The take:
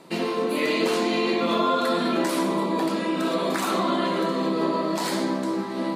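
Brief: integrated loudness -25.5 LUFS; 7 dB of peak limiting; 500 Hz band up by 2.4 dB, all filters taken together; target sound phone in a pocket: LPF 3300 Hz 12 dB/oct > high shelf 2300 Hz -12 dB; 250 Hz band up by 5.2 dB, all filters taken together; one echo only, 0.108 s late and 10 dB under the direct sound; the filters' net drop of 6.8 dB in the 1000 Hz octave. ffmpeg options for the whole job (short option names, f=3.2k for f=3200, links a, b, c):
-af "equalizer=f=250:t=o:g=6.5,equalizer=f=500:t=o:g=3,equalizer=f=1k:t=o:g=-7,alimiter=limit=-14dB:level=0:latency=1,lowpass=3.3k,highshelf=f=2.3k:g=-12,aecho=1:1:108:0.316,volume=-2.5dB"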